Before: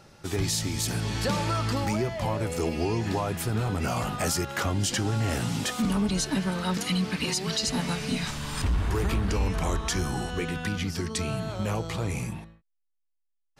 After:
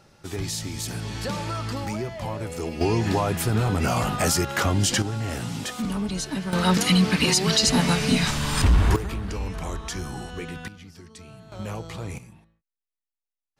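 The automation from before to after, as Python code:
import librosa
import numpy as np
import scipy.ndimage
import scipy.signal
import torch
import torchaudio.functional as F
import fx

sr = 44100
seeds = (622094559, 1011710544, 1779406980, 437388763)

y = fx.gain(x, sr, db=fx.steps((0.0, -2.5), (2.81, 5.0), (5.02, -2.0), (6.53, 8.0), (8.96, -4.0), (10.68, -15.0), (11.52, -4.0), (12.18, -14.0)))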